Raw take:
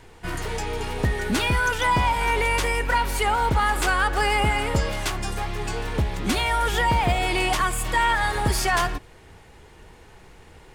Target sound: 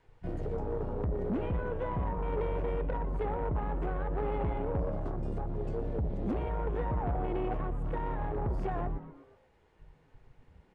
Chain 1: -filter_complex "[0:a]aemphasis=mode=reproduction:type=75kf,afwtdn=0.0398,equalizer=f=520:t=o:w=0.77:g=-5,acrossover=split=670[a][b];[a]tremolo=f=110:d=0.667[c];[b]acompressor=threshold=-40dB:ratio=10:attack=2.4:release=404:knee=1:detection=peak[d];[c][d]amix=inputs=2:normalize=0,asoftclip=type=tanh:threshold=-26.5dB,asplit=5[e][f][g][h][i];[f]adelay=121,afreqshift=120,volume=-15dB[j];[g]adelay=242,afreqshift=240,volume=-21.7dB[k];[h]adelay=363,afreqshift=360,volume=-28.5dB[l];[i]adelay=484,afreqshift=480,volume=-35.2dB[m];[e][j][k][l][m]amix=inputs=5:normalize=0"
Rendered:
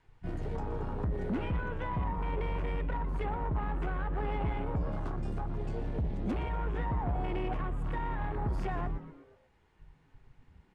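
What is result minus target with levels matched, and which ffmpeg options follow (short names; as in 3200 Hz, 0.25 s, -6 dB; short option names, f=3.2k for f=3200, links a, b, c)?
compressor: peak gain reduction -7 dB; 500 Hz band -4.0 dB
-filter_complex "[0:a]aemphasis=mode=reproduction:type=75kf,afwtdn=0.0398,equalizer=f=520:t=o:w=0.77:g=4,acrossover=split=670[a][b];[a]tremolo=f=110:d=0.667[c];[b]acompressor=threshold=-46.5dB:ratio=10:attack=2.4:release=404:knee=1:detection=peak[d];[c][d]amix=inputs=2:normalize=0,asoftclip=type=tanh:threshold=-26.5dB,asplit=5[e][f][g][h][i];[f]adelay=121,afreqshift=120,volume=-15dB[j];[g]adelay=242,afreqshift=240,volume=-21.7dB[k];[h]adelay=363,afreqshift=360,volume=-28.5dB[l];[i]adelay=484,afreqshift=480,volume=-35.2dB[m];[e][j][k][l][m]amix=inputs=5:normalize=0"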